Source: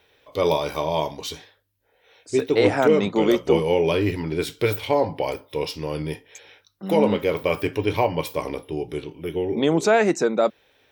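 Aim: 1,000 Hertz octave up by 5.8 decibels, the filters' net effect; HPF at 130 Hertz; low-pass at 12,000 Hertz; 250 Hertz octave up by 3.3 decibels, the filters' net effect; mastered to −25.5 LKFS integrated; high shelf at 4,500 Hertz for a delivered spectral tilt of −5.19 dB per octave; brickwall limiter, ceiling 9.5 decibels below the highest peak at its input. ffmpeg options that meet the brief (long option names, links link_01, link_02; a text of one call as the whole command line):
ffmpeg -i in.wav -af "highpass=130,lowpass=12000,equalizer=frequency=250:width_type=o:gain=4.5,equalizer=frequency=1000:width_type=o:gain=7.5,highshelf=frequency=4500:gain=-8,volume=-2dB,alimiter=limit=-13.5dB:level=0:latency=1" out.wav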